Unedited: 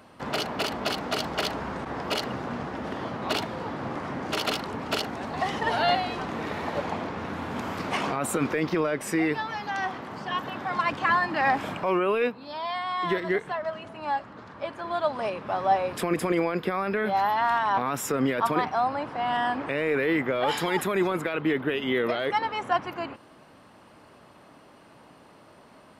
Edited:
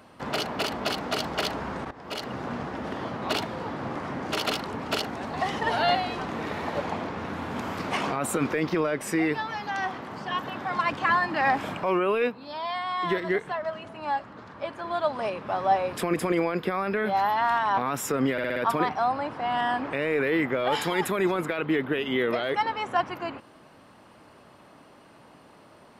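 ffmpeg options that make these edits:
-filter_complex "[0:a]asplit=6[s0][s1][s2][s3][s4][s5];[s0]atrim=end=1.91,asetpts=PTS-STARTPTS,afade=t=out:st=1.906:d=0.004:c=hsin:silence=0.133352[s6];[s1]atrim=start=1.91:end=18.382,asetpts=PTS-STARTPTS,afade=t=in:d=0.55:silence=0.133352[s7];[s2]atrim=start=18.318:end=18.382[s8];[s3]atrim=start=18.318:end=18.382[s9];[s4]atrim=start=18.318:end=18.382[s10];[s5]atrim=start=18.318[s11];[s6][s7]concat=n=2:v=0:a=1[s12];[s12][s8]acrossfade=d=0.004:c1=hsin:c2=hsin[s13];[s13][s9]acrossfade=d=0.004:c1=hsin:c2=hsin[s14];[s14][s10]acrossfade=d=0.004:c1=hsin:c2=hsin[s15];[s15][s11]acrossfade=d=0.004:c1=hsin:c2=hsin"

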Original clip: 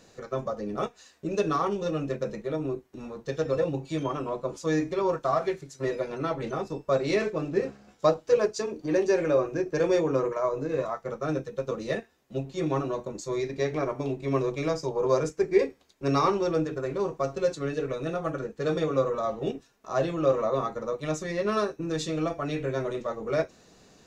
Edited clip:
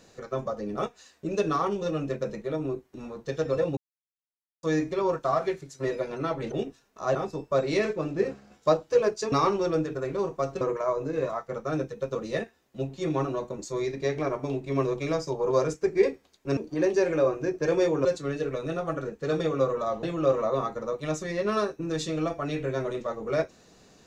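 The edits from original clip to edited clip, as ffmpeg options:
-filter_complex "[0:a]asplit=10[s0][s1][s2][s3][s4][s5][s6][s7][s8][s9];[s0]atrim=end=3.77,asetpts=PTS-STARTPTS,afade=t=out:st=3.766:d=0.004:c=hsin[s10];[s1]atrim=start=3.77:end=4.63,asetpts=PTS-STARTPTS,volume=0[s11];[s2]atrim=start=4.63:end=6.522,asetpts=PTS-STARTPTS,afade=t=in:d=0.004:c=hsin[s12];[s3]atrim=start=19.398:end=20.032[s13];[s4]atrim=start=6.518:end=8.692[s14];[s5]atrim=start=16.128:end=17.422[s15];[s6]atrim=start=10.168:end=16.132[s16];[s7]atrim=start=8.688:end=10.172[s17];[s8]atrim=start=17.418:end=19.402[s18];[s9]atrim=start=20.028[s19];[s10][s11][s12]concat=n=3:v=0:a=1[s20];[s20][s13]acrossfade=d=0.004:c1=hsin:c2=hsin[s21];[s21][s14]acrossfade=d=0.004:c1=hsin:c2=hsin[s22];[s22][s15]acrossfade=d=0.004:c1=hsin:c2=hsin[s23];[s23][s16]acrossfade=d=0.004:c1=hsin:c2=hsin[s24];[s24][s17]acrossfade=d=0.004:c1=hsin:c2=hsin[s25];[s25][s18]acrossfade=d=0.004:c1=hsin:c2=hsin[s26];[s26][s19]acrossfade=d=0.004:c1=hsin:c2=hsin"

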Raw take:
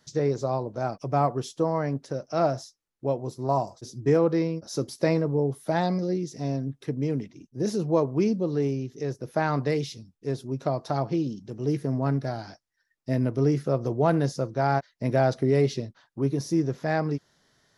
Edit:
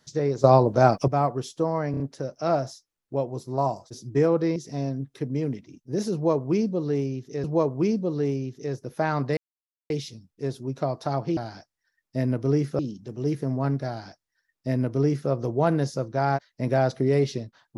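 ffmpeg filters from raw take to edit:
-filter_complex "[0:a]asplit=11[s0][s1][s2][s3][s4][s5][s6][s7][s8][s9][s10];[s0]atrim=end=0.442[s11];[s1]atrim=start=0.438:end=1.082,asetpts=PTS-STARTPTS,volume=3.76[s12];[s2]atrim=start=1.078:end=1.942[s13];[s3]atrim=start=1.908:end=1.942[s14];[s4]atrim=start=1.908:end=1.942[s15];[s5]atrim=start=1.908:end=4.472[s16];[s6]atrim=start=6.228:end=9.112[s17];[s7]atrim=start=7.808:end=9.74,asetpts=PTS-STARTPTS,afade=t=out:st=1.928:d=0.004:c=hsin,apad=pad_dur=0.53[s18];[s8]atrim=start=9.74:end=11.212,asetpts=PTS-STARTPTS,afade=t=in:d=0.004:c=hsin[s19];[s9]atrim=start=12.298:end=13.722[s20];[s10]atrim=start=11.208[s21];[s11][s12]acrossfade=d=0.004:c1=hsin:c2=hsin[s22];[s22][s13]acrossfade=d=0.004:c1=hsin:c2=hsin[s23];[s23][s14]acrossfade=d=0.004:c1=hsin:c2=hsin[s24];[s24][s15]acrossfade=d=0.004:c1=hsin:c2=hsin[s25];[s25][s16]acrossfade=d=0.004:c1=hsin:c2=hsin[s26];[s26][s17]acrossfade=d=0.004:c1=hsin:c2=hsin[s27];[s18][s19]concat=n=2:v=0:a=1[s28];[s27][s28]acrossfade=d=0.004:c1=hsin:c2=hsin[s29];[s29][s20]acrossfade=d=0.004:c1=hsin:c2=hsin[s30];[s30][s21]acrossfade=d=0.004:c1=hsin:c2=hsin"

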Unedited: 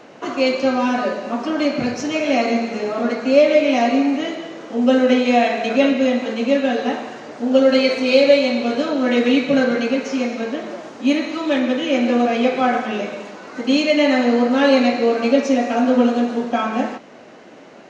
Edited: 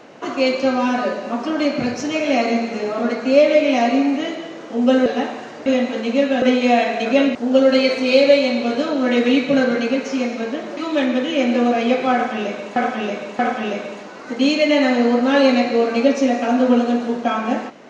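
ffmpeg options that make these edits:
-filter_complex "[0:a]asplit=8[s0][s1][s2][s3][s4][s5][s6][s7];[s0]atrim=end=5.062[s8];[s1]atrim=start=6.748:end=7.352[s9];[s2]atrim=start=5.988:end=6.752[s10];[s3]atrim=start=5.058:end=5.992[s11];[s4]atrim=start=7.348:end=10.772[s12];[s5]atrim=start=11.308:end=13.302[s13];[s6]atrim=start=12.668:end=13.302[s14];[s7]atrim=start=12.668[s15];[s8][s9]acrossfade=d=0.004:c1=hsin:c2=hsin[s16];[s16][s10]acrossfade=d=0.004:c1=hsin:c2=hsin[s17];[s17][s11]acrossfade=d=0.004:c1=hsin:c2=hsin[s18];[s18][s12]acrossfade=d=0.004:c1=hsin:c2=hsin[s19];[s19][s13]acrossfade=d=0.004:c1=hsin:c2=hsin[s20];[s20][s14]acrossfade=d=0.004:c1=hsin:c2=hsin[s21];[s21][s15]acrossfade=d=0.004:c1=hsin:c2=hsin"

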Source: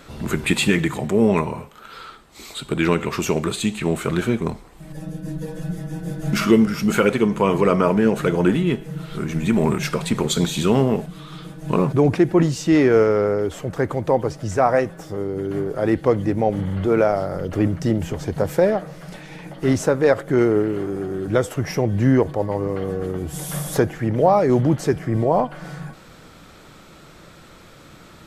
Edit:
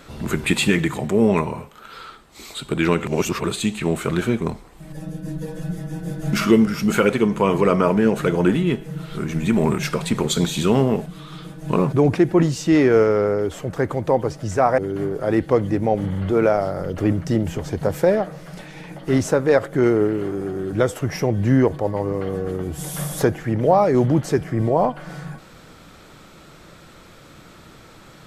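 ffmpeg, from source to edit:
-filter_complex "[0:a]asplit=4[s0][s1][s2][s3];[s0]atrim=end=3.072[s4];[s1]atrim=start=3.068:end=3.442,asetpts=PTS-STARTPTS,areverse[s5];[s2]atrim=start=3.438:end=14.782[s6];[s3]atrim=start=15.328[s7];[s4][s5]acrossfade=d=0.004:c1=hsin:c2=hsin[s8];[s8][s6]acrossfade=d=0.004:c1=hsin:c2=hsin[s9];[s9][s7]acrossfade=d=0.004:c1=hsin:c2=hsin"

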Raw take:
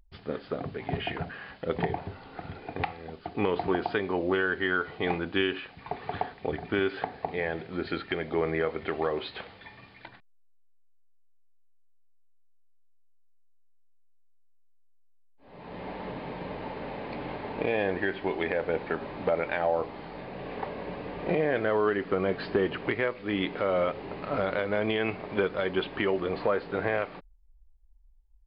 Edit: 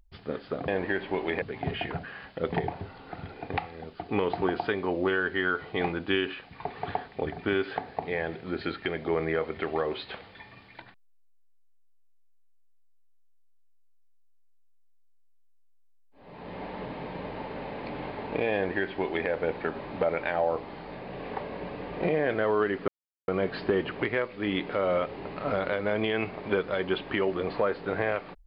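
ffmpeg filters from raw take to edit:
-filter_complex "[0:a]asplit=4[s0][s1][s2][s3];[s0]atrim=end=0.682[s4];[s1]atrim=start=17.808:end=18.552[s5];[s2]atrim=start=0.678:end=22.14,asetpts=PTS-STARTPTS,afade=t=out:st=21.458:d=0.004:c=hsin,apad=pad_dur=0.4[s6];[s3]atrim=start=22.14,asetpts=PTS-STARTPTS,afade=t=in:d=0.004:c=hsin[s7];[s4][s5]acrossfade=d=0.004:c1=hsin:c2=hsin[s8];[s6][s7]concat=n=2:v=0:a=1[s9];[s8][s9]acrossfade=d=0.004:c1=hsin:c2=hsin"

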